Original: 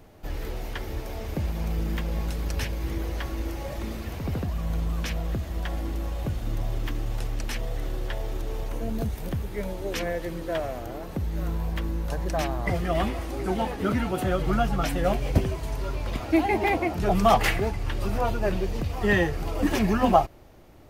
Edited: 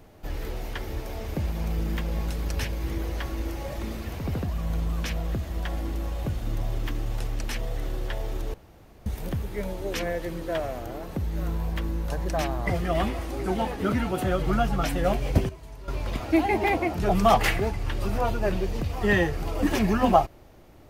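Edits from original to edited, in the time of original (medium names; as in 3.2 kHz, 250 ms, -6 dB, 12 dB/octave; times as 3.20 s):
8.54–9.06 s: room tone
15.49–15.88 s: gain -12 dB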